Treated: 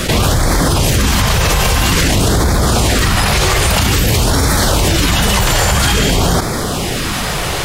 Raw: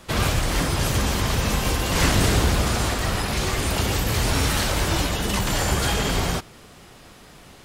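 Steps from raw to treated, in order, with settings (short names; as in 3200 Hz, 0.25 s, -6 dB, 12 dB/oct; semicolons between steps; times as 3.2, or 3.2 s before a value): LFO notch sine 0.5 Hz 230–2900 Hz; maximiser +17.5 dB; fast leveller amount 70%; gain -4.5 dB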